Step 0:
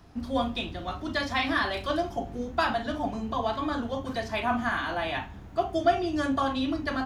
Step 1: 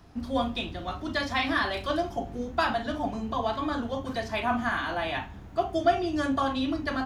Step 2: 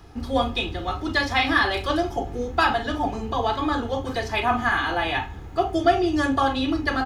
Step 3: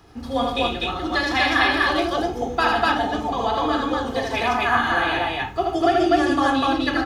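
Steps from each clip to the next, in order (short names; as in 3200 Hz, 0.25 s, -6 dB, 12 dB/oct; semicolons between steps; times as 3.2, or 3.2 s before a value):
nothing audible
comb 2.4 ms, depth 48%; gain +5.5 dB
low shelf 75 Hz -11.5 dB; on a send: loudspeakers at several distances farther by 27 m -3 dB, 51 m -11 dB, 85 m 0 dB; on the sum: gain -1 dB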